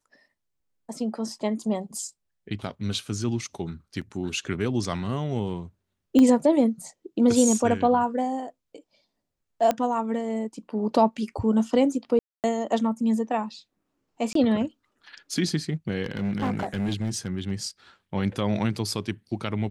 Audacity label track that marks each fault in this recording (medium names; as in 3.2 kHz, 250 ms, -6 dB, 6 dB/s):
4.010000	4.020000	dropout 5.3 ms
6.190000	6.190000	pop -11 dBFS
9.710000	9.710000	pop -11 dBFS
12.190000	12.440000	dropout 248 ms
14.330000	14.350000	dropout 23 ms
16.030000	17.510000	clipped -22.5 dBFS